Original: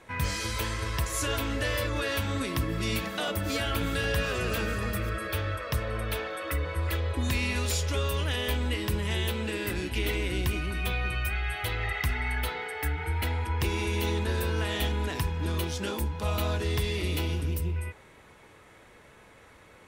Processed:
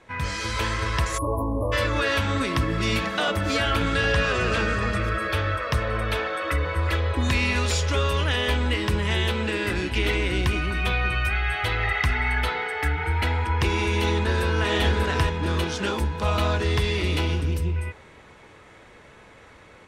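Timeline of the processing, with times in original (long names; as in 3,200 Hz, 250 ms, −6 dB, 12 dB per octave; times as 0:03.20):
0:01.18–0:01.72: time-frequency box erased 1,200–9,500 Hz
0:03.83–0:05.04: low-pass filter 9,200 Hz 24 dB per octave
0:14.05–0:14.70: delay throw 590 ms, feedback 45%, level −4 dB
whole clip: low-pass filter 7,300 Hz 12 dB per octave; dynamic equaliser 1,300 Hz, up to +4 dB, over −43 dBFS, Q 0.84; automatic gain control gain up to 5 dB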